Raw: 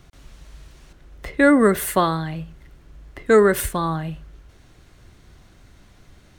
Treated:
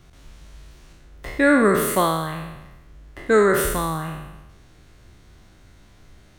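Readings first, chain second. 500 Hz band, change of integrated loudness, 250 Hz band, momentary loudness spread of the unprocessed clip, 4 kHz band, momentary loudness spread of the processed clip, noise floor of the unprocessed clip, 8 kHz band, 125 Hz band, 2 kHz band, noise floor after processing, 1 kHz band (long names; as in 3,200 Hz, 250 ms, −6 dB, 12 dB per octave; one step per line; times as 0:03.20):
−1.0 dB, −1.0 dB, −2.0 dB, 18 LU, +1.0 dB, 19 LU, −52 dBFS, +1.0 dB, −1.5 dB, +1.0 dB, −51 dBFS, 0.0 dB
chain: peak hold with a decay on every bin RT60 1.06 s
level −3 dB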